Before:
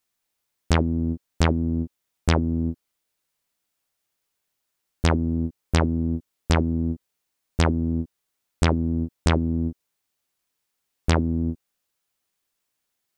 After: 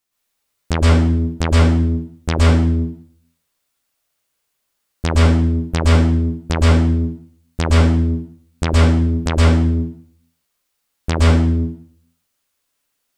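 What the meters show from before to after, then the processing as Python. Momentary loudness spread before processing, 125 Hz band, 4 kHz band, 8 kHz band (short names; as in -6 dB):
9 LU, +10.0 dB, +6.5 dB, +6.5 dB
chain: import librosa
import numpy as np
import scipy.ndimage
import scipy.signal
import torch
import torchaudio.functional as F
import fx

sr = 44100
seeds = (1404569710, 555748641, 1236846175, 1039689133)

y = fx.rev_plate(x, sr, seeds[0], rt60_s=0.59, hf_ratio=1.0, predelay_ms=105, drr_db=-5.5)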